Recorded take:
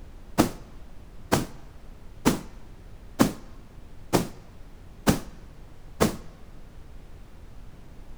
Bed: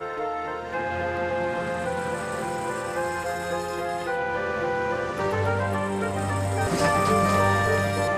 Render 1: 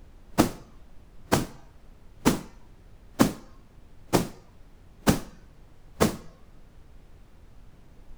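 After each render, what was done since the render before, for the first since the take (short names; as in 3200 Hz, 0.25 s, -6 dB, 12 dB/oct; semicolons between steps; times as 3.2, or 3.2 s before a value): noise print and reduce 6 dB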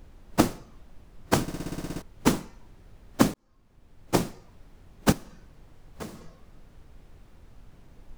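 1.42 stutter in place 0.06 s, 10 plays; 3.34–4.24 fade in; 5.12–6.21 compressor 2.5:1, threshold -41 dBFS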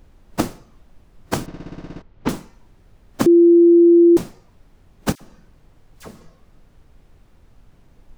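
1.46–2.29 air absorption 200 m; 3.26–4.17 bleep 342 Hz -7 dBFS; 5.15–6.11 dispersion lows, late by 56 ms, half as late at 1400 Hz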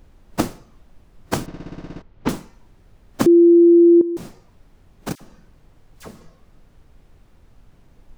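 4.01–5.11 compressor, threshold -24 dBFS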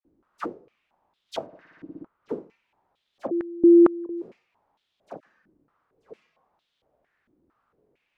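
dispersion lows, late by 52 ms, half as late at 1700 Hz; stepped band-pass 4.4 Hz 310–3500 Hz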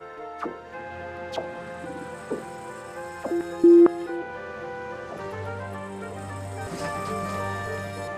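add bed -9 dB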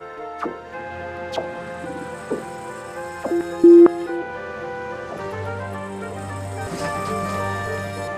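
gain +5 dB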